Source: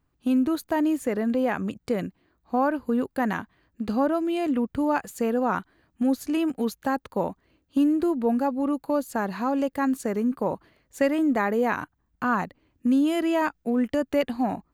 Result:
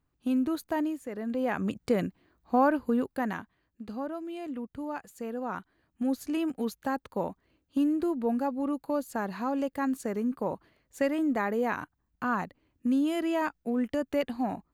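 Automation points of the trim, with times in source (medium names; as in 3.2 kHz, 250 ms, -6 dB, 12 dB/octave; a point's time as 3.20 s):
0.80 s -5 dB
1.02 s -13 dB
1.71 s 0 dB
2.73 s 0 dB
3.84 s -12 dB
5.17 s -12 dB
6.19 s -5 dB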